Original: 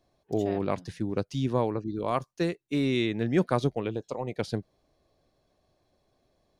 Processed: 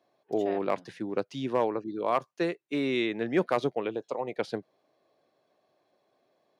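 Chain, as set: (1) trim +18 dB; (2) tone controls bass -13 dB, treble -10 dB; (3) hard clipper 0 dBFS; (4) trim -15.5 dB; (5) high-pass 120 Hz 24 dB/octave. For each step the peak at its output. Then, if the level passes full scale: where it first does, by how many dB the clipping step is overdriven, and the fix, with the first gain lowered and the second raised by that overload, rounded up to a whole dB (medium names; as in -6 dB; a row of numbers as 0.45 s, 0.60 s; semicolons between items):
+6.5 dBFS, +6.5 dBFS, 0.0 dBFS, -15.5 dBFS, -12.5 dBFS; step 1, 6.5 dB; step 1 +11 dB, step 4 -8.5 dB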